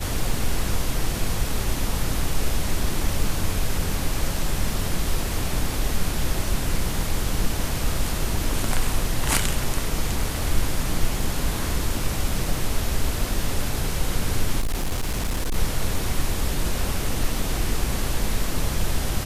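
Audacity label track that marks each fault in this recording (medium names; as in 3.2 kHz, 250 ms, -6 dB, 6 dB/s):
14.600000	15.560000	clipped -20 dBFS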